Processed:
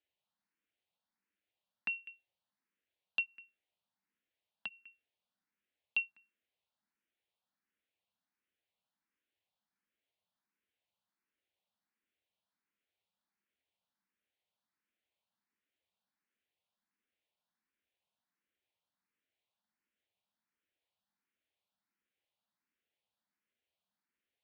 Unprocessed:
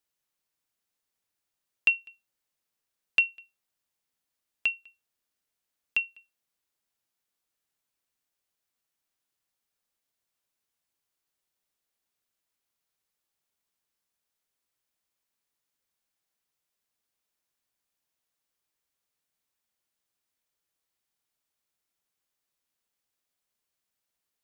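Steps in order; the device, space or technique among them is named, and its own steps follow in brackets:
barber-pole phaser into a guitar amplifier (frequency shifter mixed with the dry sound +1.4 Hz; soft clipping −24.5 dBFS, distortion −15 dB; loudspeaker in its box 81–3,700 Hz, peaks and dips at 140 Hz −10 dB, 200 Hz +7 dB, 420 Hz −3 dB, 1,200 Hz −4 dB)
level +1 dB

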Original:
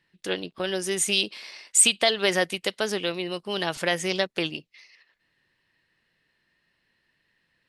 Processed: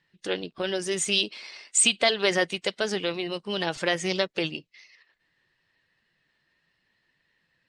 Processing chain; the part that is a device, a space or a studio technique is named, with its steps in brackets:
clip after many re-uploads (low-pass filter 8,300 Hz 24 dB per octave; spectral magnitudes quantised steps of 15 dB)

